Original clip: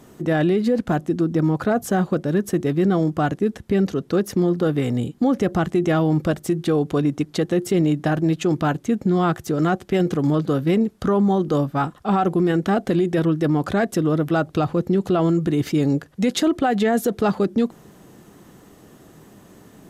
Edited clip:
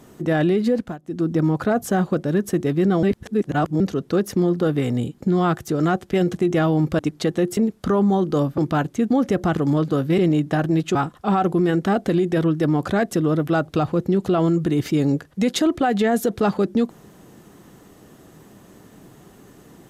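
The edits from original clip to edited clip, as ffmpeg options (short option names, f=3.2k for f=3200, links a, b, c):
-filter_complex "[0:a]asplit=14[a][b][c][d][e][f][g][h][i][j][k][l][m][n];[a]atrim=end=0.98,asetpts=PTS-STARTPTS,afade=t=out:st=0.73:d=0.25:silence=0.1[o];[b]atrim=start=0.98:end=1.02,asetpts=PTS-STARTPTS,volume=-20dB[p];[c]atrim=start=1.02:end=3.032,asetpts=PTS-STARTPTS,afade=t=in:d=0.25:silence=0.1[q];[d]atrim=start=3.028:end=3.802,asetpts=PTS-STARTPTS,areverse[r];[e]atrim=start=3.798:end=5.212[s];[f]atrim=start=8.998:end=10.132[t];[g]atrim=start=5.668:end=6.322[u];[h]atrim=start=7.128:end=7.712[v];[i]atrim=start=10.748:end=11.762[w];[j]atrim=start=8.478:end=9.002[x];[k]atrim=start=5.208:end=5.672[y];[l]atrim=start=10.128:end=10.752[z];[m]atrim=start=7.708:end=8.482[aa];[n]atrim=start=11.758[ab];[o][p][q]concat=n=3:v=0:a=1[ac];[ac][r]acrossfade=d=0.004:c1=hsin:c2=hsin[ad];[ad][s]acrossfade=d=0.004:c1=hsin:c2=hsin[ae];[ae][t]acrossfade=d=0.004:c1=hsin:c2=hsin[af];[af][u]acrossfade=d=0.004:c1=hsin:c2=hsin[ag];[ag][v]acrossfade=d=0.004:c1=hsin:c2=hsin[ah];[ah][w]acrossfade=d=0.004:c1=hsin:c2=hsin[ai];[ai][x]acrossfade=d=0.004:c1=hsin:c2=hsin[aj];[aj][y]acrossfade=d=0.004:c1=hsin:c2=hsin[ak];[ak][z]acrossfade=d=0.004:c1=hsin:c2=hsin[al];[al][aa]acrossfade=d=0.004:c1=hsin:c2=hsin[am];[am][ab]acrossfade=d=0.004:c1=hsin:c2=hsin"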